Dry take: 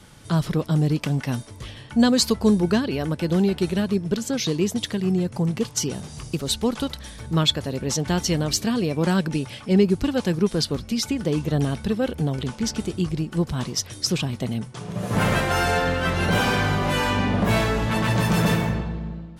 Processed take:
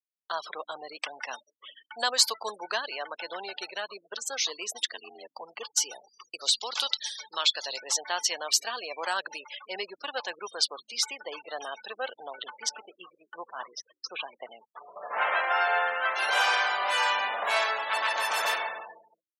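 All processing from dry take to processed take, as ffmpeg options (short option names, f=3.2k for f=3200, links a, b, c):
-filter_complex "[0:a]asettb=1/sr,asplit=3[a][b][c];[a]atrim=end=4.854[d];[b]atrim=start=4.85:end=5.42,asetpts=PTS-STARTPTS,afade=t=in:d=0.004:c=qsin,afade=t=out:st=0.566:d=0.004:c=qsin,acrossover=split=5600[e][f];[f]acompressor=threshold=-55dB:ratio=4:attack=1:release=60[g];[e][g]amix=inputs=2:normalize=0,aeval=exprs='val(0)*sin(2*PI*45*n/s)':c=same,highshelf=f=3.5k:g=9[h];[c]atrim=start=5.416[i];[d][h]acrossfade=d=0.004:c1=hsin:c2=qsin[j];[j][i]acrossfade=d=0.004:c1=qsin:c2=hsin,asettb=1/sr,asplit=3[k][l][m];[k]atrim=end=6.414[n];[l]atrim=start=6.41:end=7.83,asetpts=PTS-STARTPTS,afade=t=in:d=0.004:c=qsin,afade=t=out:st=1.416:d=0.004:c=qsin,equalizer=f=4.7k:w=0.74:g=11.5,acompressor=threshold=-18dB:ratio=20:attack=3.2:release=140:knee=1:detection=peak[o];[m]atrim=start=7.826[p];[n][o]acrossfade=d=0.004:c1=hsin:c2=qsin[q];[q][p]acrossfade=d=0.004:c1=qsin:c2=hsin,asettb=1/sr,asplit=3[r][s][t];[r]atrim=end=12.694[u];[s]atrim=start=12.69:end=16.16,asetpts=PTS-STARTPTS,afade=t=in:d=0.004:c=qsin,afade=t=out:st=3.466:d=0.004:c=qsin,lowpass=2.5k,acrusher=bits=8:mix=0:aa=0.5[v];[t]atrim=start=16.156[w];[u][v]acrossfade=d=0.004:c1=hsin:c2=qsin[x];[x][w]acrossfade=d=0.004:c1=qsin:c2=hsin,afftfilt=real='re*gte(hypot(re,im),0.02)':imag='im*gte(hypot(re,im),0.02)':win_size=1024:overlap=0.75,highpass=f=700:w=0.5412,highpass=f=700:w=1.3066,agate=range=-33dB:threshold=-46dB:ratio=3:detection=peak"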